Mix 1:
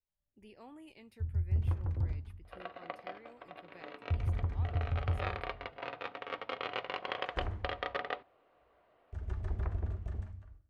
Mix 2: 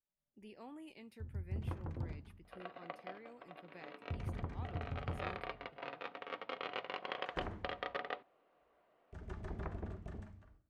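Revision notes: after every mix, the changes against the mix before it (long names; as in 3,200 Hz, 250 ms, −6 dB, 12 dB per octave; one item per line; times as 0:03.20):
second sound −4.5 dB
master: add low shelf with overshoot 120 Hz −9 dB, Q 1.5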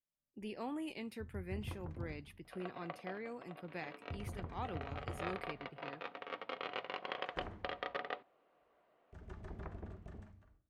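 speech +10.0 dB
first sound −4.0 dB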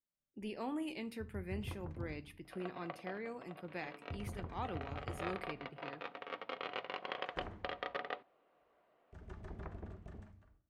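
speech: send on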